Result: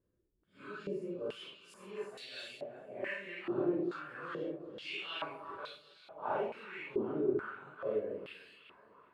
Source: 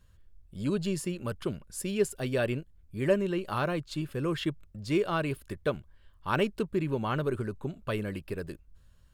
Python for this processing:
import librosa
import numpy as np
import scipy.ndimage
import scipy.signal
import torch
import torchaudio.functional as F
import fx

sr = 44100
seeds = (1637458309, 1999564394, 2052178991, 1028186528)

y = fx.phase_scramble(x, sr, seeds[0], window_ms=200)
y = fx.echo_alternate(y, sr, ms=188, hz=850.0, feedback_pct=75, wet_db=-10.0)
y = fx.filter_held_bandpass(y, sr, hz=2.3, low_hz=350.0, high_hz=4200.0)
y = y * librosa.db_to_amplitude(4.0)